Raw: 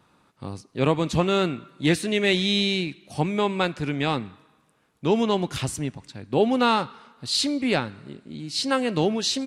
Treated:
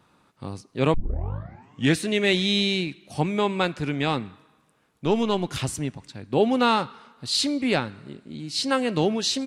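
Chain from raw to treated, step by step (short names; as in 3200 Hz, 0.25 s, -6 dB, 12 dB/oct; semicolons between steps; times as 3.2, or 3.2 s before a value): 0.94 tape start 1.03 s; 5.05–5.49 half-wave gain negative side -3 dB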